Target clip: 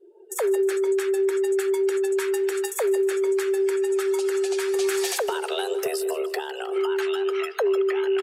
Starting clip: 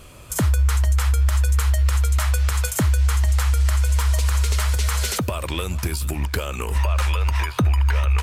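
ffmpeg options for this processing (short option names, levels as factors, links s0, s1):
-filter_complex "[0:a]afreqshift=320,asettb=1/sr,asplit=3[s0][s1][s2];[s0]atrim=end=4.744[s3];[s1]atrim=start=4.74:end=6.22,asetpts=PTS-STARTPTS,afade=t=in:d=0.004:c=qsin,afade=t=out:st=1.476:d=0.004:c=qsin,aeval=exprs='0.376*(cos(1*acos(clip(val(0)/0.376,-1,1)))-cos(1*PI/2))+0.0531*(cos(5*acos(clip(val(0)/0.376,-1,1)))-cos(5*PI/2))+0.0119*(cos(7*acos(clip(val(0)/0.376,-1,1)))-cos(7*PI/2))':c=same[s4];[s2]atrim=start=6.216[s5];[s3][s4]acrossfade=d=0.004:c1=hsin:c2=qsin[s6];[s6][s5]acrossfade=d=0.004:c1=qsin:c2=hsin,afftdn=nr=34:nf=-36,aecho=1:1:156|312|468|624|780:0.15|0.0793|0.042|0.0223|0.0118,volume=0.596"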